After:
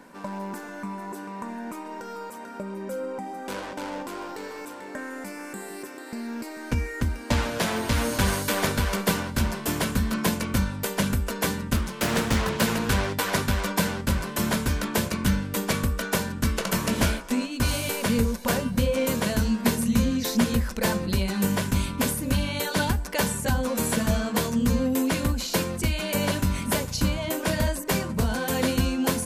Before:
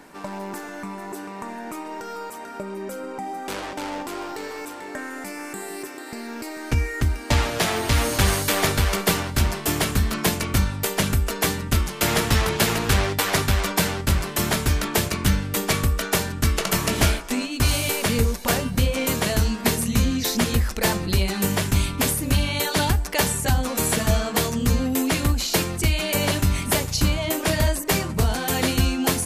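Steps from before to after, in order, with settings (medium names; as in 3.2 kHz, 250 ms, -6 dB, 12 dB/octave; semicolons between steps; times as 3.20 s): small resonant body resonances 220/520/1000/1500 Hz, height 9 dB, ringing for 45 ms; 11.76–12.62 s: loudspeaker Doppler distortion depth 0.59 ms; trim -5.5 dB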